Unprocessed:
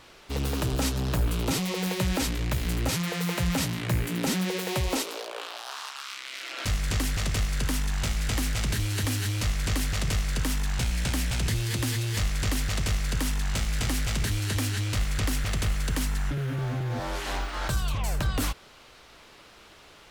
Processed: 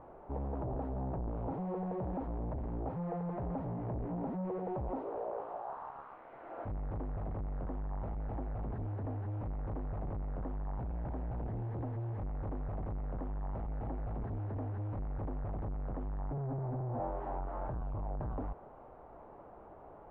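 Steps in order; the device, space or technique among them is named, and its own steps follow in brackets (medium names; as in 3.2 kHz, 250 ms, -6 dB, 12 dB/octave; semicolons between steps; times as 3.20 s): overdriven synthesiser ladder filter (saturation -36 dBFS, distortion -7 dB; four-pole ladder low-pass 940 Hz, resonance 45%); trim +9 dB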